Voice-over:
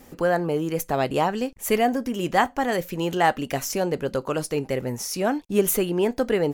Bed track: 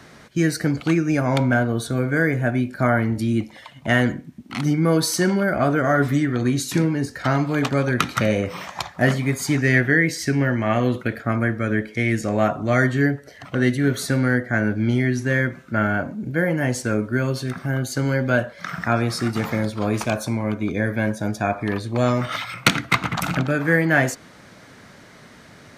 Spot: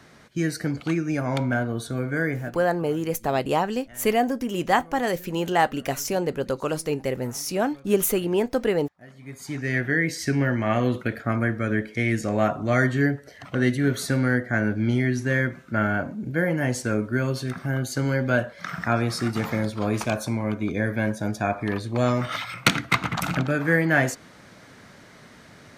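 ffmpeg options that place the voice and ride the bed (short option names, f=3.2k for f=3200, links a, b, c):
-filter_complex "[0:a]adelay=2350,volume=-0.5dB[a];[1:a]volume=21.5dB,afade=t=out:st=2.34:d=0.23:silence=0.0630957,afade=t=in:st=9.13:d=1.18:silence=0.0446684[b];[a][b]amix=inputs=2:normalize=0"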